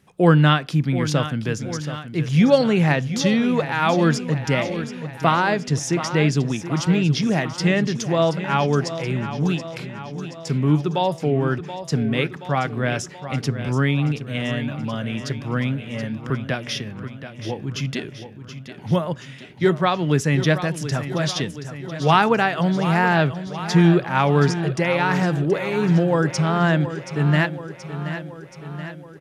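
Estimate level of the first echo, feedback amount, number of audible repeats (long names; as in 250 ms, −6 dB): −11.5 dB, 60%, 6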